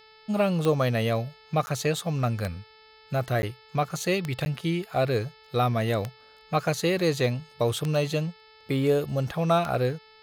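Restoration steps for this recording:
click removal
hum removal 436.9 Hz, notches 12
repair the gap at 0:01.66/0:03.42/0:04.45, 10 ms

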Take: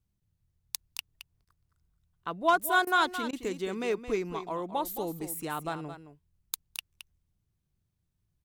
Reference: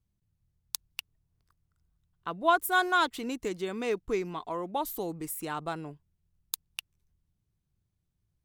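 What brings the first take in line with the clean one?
clipped peaks rebuilt −15 dBFS
repair the gap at 0:01.45/0:02.85/0:03.31, 18 ms
echo removal 219 ms −11 dB

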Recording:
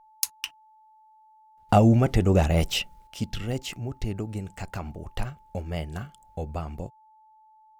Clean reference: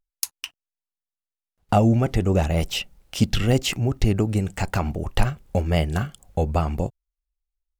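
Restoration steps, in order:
notch filter 870 Hz, Q 30
level 0 dB, from 0:03.07 +10.5 dB

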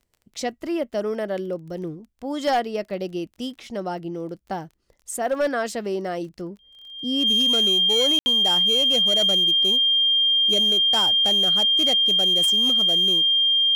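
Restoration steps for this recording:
clipped peaks rebuilt −15.5 dBFS
click removal
notch filter 3,200 Hz, Q 30
ambience match 0:08.19–0:08.26

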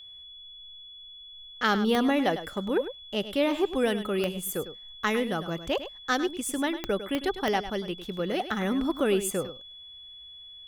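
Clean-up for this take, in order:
click removal
notch filter 3,400 Hz, Q 30
echo removal 102 ms −12 dB

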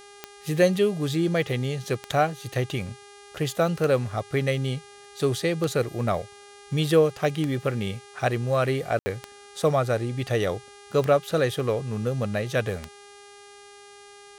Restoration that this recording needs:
click removal
hum removal 405.6 Hz, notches 27
ambience match 0:08.99–0:09.06

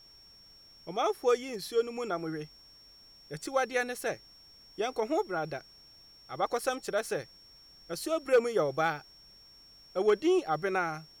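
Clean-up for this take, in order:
clipped peaks rebuilt −17 dBFS
notch filter 5,500 Hz, Q 30
downward expander −49 dBFS, range −21 dB

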